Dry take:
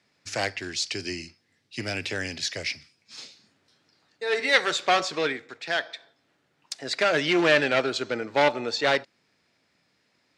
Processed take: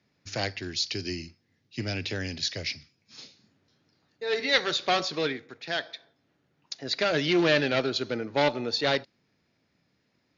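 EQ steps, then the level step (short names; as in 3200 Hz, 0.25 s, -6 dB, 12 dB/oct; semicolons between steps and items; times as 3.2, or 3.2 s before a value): low shelf 370 Hz +11.5 dB; dynamic EQ 4200 Hz, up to +8 dB, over -43 dBFS, Q 1.4; brick-wall FIR low-pass 7100 Hz; -6.5 dB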